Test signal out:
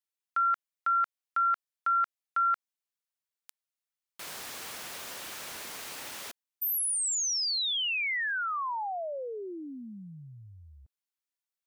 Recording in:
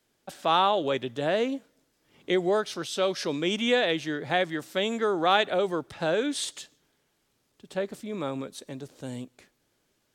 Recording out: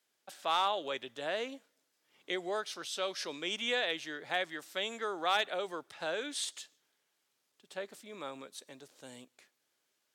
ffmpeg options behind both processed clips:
-af "highpass=f=980:p=1,volume=16.5dB,asoftclip=hard,volume=-16.5dB,volume=-4.5dB"

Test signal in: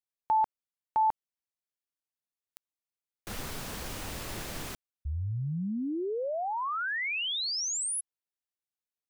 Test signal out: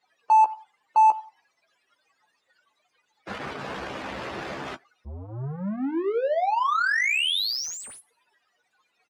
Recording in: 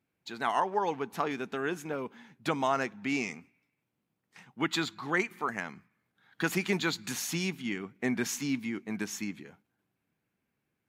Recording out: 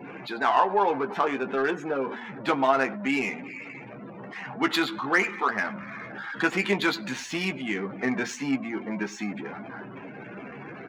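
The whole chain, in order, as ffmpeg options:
-filter_complex "[0:a]aeval=exprs='val(0)+0.5*0.0251*sgn(val(0))':c=same,highpass=48,lowshelf=f=220:g=-12,asplit=2[a][b];[b]adelay=15,volume=-6dB[c];[a][c]amix=inputs=2:normalize=0,asplit=2[d][e];[e]aecho=0:1:94|188:0.126|0.034[f];[d][f]amix=inputs=2:normalize=0,afftdn=nr=30:nf=-40,lowshelf=f=61:g=-11,adynamicsmooth=sensitivity=2.5:basefreq=2.1k,volume=5.5dB"

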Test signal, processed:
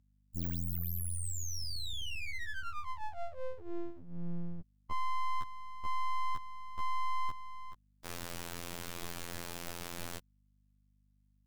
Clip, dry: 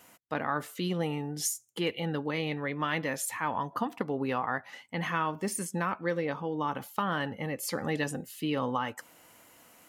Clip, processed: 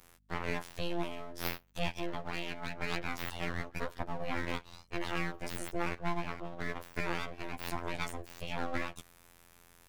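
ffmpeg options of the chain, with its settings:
-af "afftfilt=real='hypot(re,im)*cos(PI*b)':imag='0':win_size=2048:overlap=0.75,aeval=exprs='abs(val(0))':c=same,aeval=exprs='val(0)+0.000355*(sin(2*PI*50*n/s)+sin(2*PI*2*50*n/s)/2+sin(2*PI*3*50*n/s)/3+sin(2*PI*4*50*n/s)/4+sin(2*PI*5*50*n/s)/5)':c=same"

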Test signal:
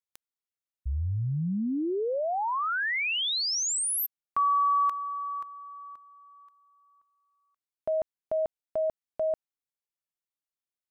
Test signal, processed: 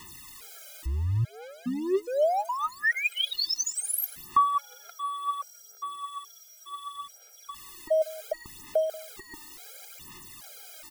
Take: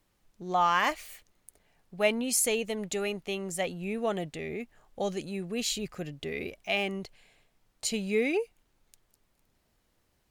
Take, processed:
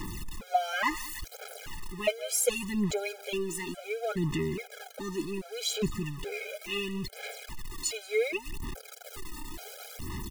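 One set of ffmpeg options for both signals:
-af "aeval=exprs='val(0)+0.5*0.02*sgn(val(0))':c=same,aphaser=in_gain=1:out_gain=1:delay=3.3:decay=0.61:speed=0.69:type=sinusoidal,aecho=1:1:184:0.119,afftfilt=real='re*gt(sin(2*PI*1.2*pts/sr)*(1-2*mod(floor(b*sr/1024/420),2)),0)':imag='im*gt(sin(2*PI*1.2*pts/sr)*(1-2*mod(floor(b*sr/1024/420),2)),0)':win_size=1024:overlap=0.75,volume=-1.5dB"

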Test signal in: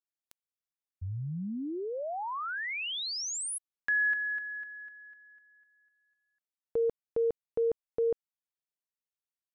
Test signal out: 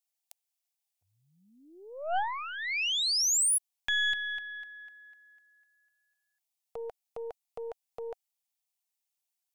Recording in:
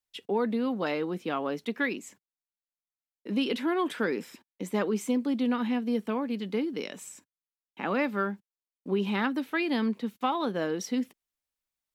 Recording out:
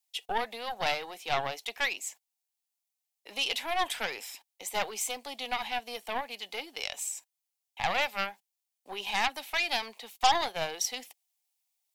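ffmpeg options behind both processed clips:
-af "highpass=f=750:t=q:w=5.1,aeval=exprs='0.422*(cos(1*acos(clip(val(0)/0.422,-1,1)))-cos(1*PI/2))+0.0266*(cos(4*acos(clip(val(0)/0.422,-1,1)))-cos(4*PI/2))+0.0299*(cos(8*acos(clip(val(0)/0.422,-1,1)))-cos(8*PI/2))':c=same,aexciter=amount=4.4:drive=4.4:freq=2.1k,volume=-6.5dB"

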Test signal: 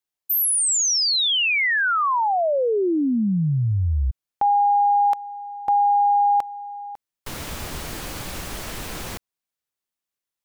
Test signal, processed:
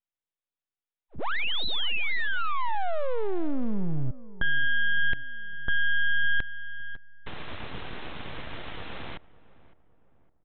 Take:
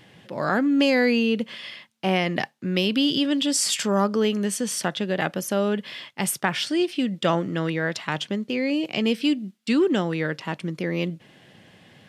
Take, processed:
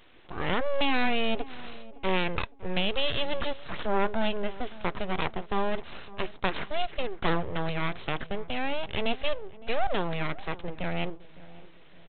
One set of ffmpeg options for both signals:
-filter_complex "[0:a]aresample=8000,aeval=exprs='abs(val(0))':c=same,aresample=44100,asplit=2[a][b];[b]adelay=560,lowpass=f=1.1k:p=1,volume=-18dB,asplit=2[c][d];[d]adelay=560,lowpass=f=1.1k:p=1,volume=0.46,asplit=2[e][f];[f]adelay=560,lowpass=f=1.1k:p=1,volume=0.46,asplit=2[g][h];[h]adelay=560,lowpass=f=1.1k:p=1,volume=0.46[i];[a][c][e][g][i]amix=inputs=5:normalize=0,volume=-3dB"

